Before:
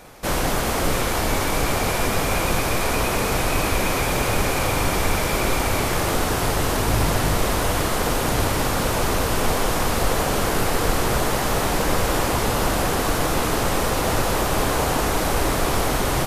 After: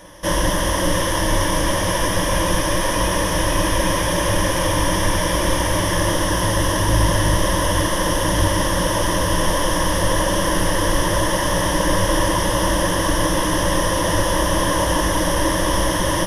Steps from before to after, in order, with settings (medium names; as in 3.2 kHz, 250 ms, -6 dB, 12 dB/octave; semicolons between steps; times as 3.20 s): rippled EQ curve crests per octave 1.2, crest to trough 15 dB